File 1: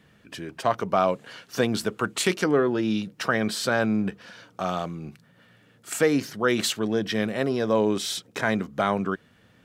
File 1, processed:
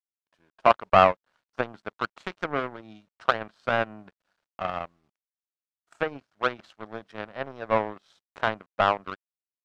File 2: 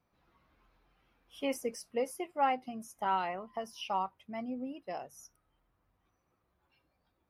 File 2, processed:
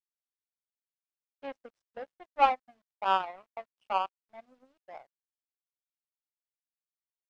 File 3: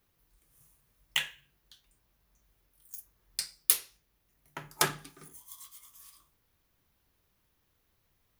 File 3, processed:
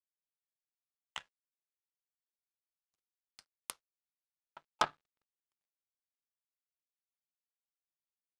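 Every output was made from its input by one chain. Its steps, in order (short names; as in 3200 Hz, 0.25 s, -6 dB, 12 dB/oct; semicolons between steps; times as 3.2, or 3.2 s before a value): band shelf 910 Hz +12 dB; treble ducked by the level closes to 2600 Hz, closed at -14 dBFS; power-law curve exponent 2; requantised 12-bit, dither none; air absorption 72 m; gain -1 dB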